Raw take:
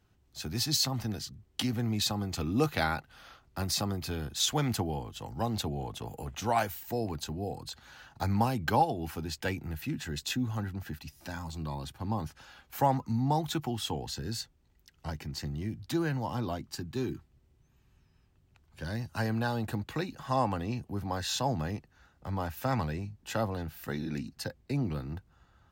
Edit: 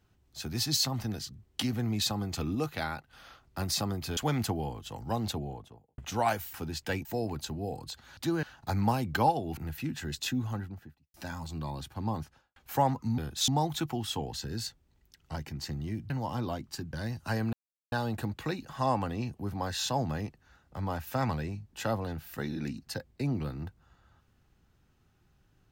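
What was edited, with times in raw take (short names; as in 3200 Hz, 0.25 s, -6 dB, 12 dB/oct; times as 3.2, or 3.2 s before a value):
2.55–3.13 gain -5 dB
4.17–4.47 move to 13.22
5.52–6.28 studio fade out
9.1–9.61 move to 6.84
10.45–11.18 studio fade out
12.18–12.6 studio fade out
15.84–16.1 move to 7.96
16.93–18.82 cut
19.42 insert silence 0.39 s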